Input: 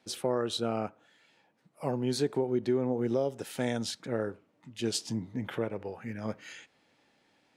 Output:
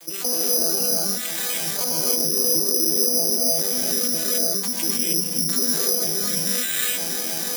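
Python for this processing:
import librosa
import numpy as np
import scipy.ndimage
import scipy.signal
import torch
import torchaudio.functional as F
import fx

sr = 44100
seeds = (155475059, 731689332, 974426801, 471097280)

p1 = fx.vocoder_arp(x, sr, chord='minor triad', root=52, every_ms=106)
p2 = fx.recorder_agc(p1, sr, target_db=-27.0, rise_db_per_s=79.0, max_gain_db=30)
p3 = scipy.signal.sosfilt(scipy.signal.butter(2, 320.0, 'highpass', fs=sr, output='sos'), p2)
p4 = fx.peak_eq(p3, sr, hz=690.0, db=-6.5, octaves=2.3)
p5 = p4 + fx.echo_single(p4, sr, ms=340, db=-23.5, dry=0)
p6 = fx.rev_gated(p5, sr, seeds[0], gate_ms=330, shape='rising', drr_db=-6.5)
p7 = (np.kron(scipy.signal.resample_poly(p6, 1, 8), np.eye(8)[0]) * 8)[:len(p6)]
y = fx.env_flatten(p7, sr, amount_pct=50)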